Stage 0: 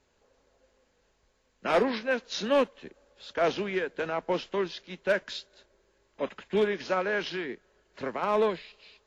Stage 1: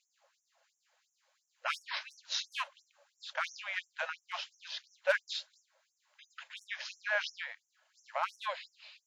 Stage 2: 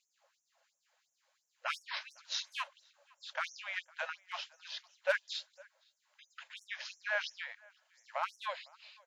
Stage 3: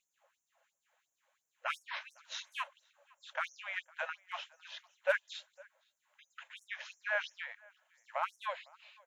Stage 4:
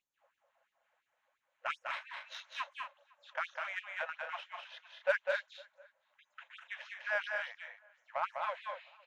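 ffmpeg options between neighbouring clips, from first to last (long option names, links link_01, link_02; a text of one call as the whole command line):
ffmpeg -i in.wav -af "afftfilt=real='re*gte(b*sr/1024,500*pow(5600/500,0.5+0.5*sin(2*PI*2.9*pts/sr)))':imag='im*gte(b*sr/1024,500*pow(5600/500,0.5+0.5*sin(2*PI*2.9*pts/sr)))':win_size=1024:overlap=0.75" out.wav
ffmpeg -i in.wav -filter_complex "[0:a]asplit=2[link_01][link_02];[link_02]adelay=507.3,volume=-25dB,highshelf=frequency=4000:gain=-11.4[link_03];[link_01][link_03]amix=inputs=2:normalize=0,volume=-2dB" out.wav
ffmpeg -i in.wav -af "equalizer=frequency=4800:width_type=o:width=0.61:gain=-14.5,volume=1dB" out.wav
ffmpeg -i in.wav -af "adynamicsmooth=sensitivity=2.5:basefreq=3600,aecho=1:1:201.2|239.1:0.631|0.355" out.wav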